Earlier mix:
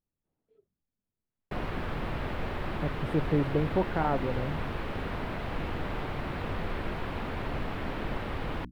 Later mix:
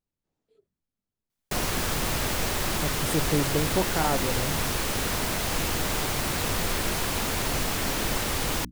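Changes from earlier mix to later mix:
background +3.5 dB; master: remove air absorption 490 m

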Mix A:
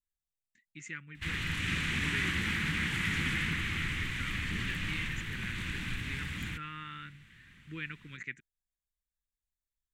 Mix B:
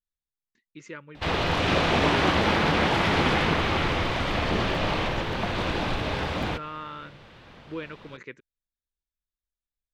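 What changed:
background +7.5 dB; master: remove EQ curve 180 Hz 0 dB, 310 Hz -8 dB, 640 Hz -29 dB, 1900 Hz +5 dB, 5000 Hz -6 dB, 7600 Hz +10 dB

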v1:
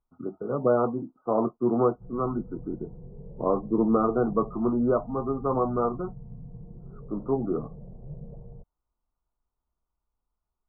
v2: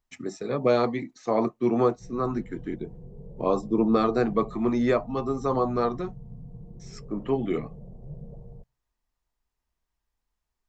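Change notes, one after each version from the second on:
speech: send on; master: remove brick-wall FIR low-pass 1500 Hz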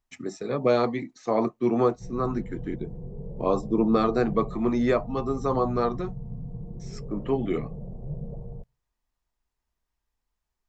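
background +6.0 dB

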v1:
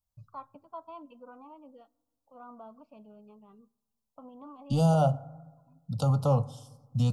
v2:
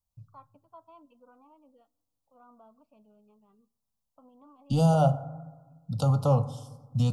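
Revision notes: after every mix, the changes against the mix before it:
first voice -8.5 dB; second voice: send +6.5 dB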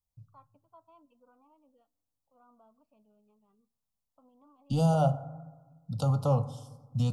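first voice -6.0 dB; second voice -3.0 dB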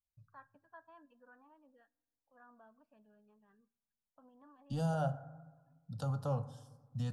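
second voice -9.5 dB; master: remove Butterworth band-stop 1700 Hz, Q 1.8

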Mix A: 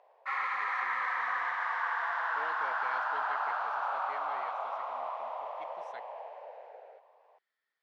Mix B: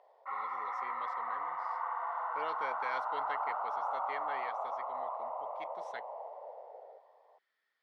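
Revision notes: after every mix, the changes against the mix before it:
speech +4.5 dB; background: add polynomial smoothing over 65 samples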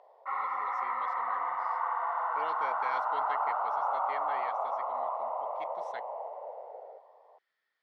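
background +5.0 dB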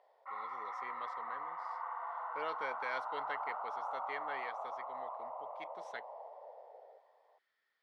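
background -10.0 dB

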